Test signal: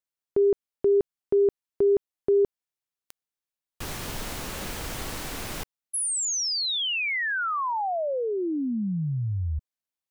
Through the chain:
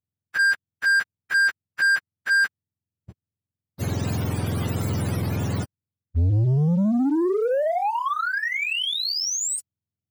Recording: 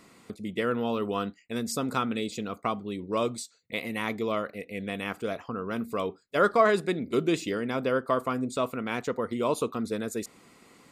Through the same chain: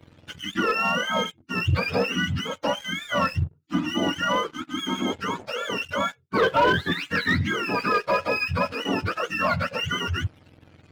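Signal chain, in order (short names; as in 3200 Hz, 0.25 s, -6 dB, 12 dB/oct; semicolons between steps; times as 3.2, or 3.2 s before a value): spectrum mirrored in octaves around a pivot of 800 Hz; sample leveller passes 2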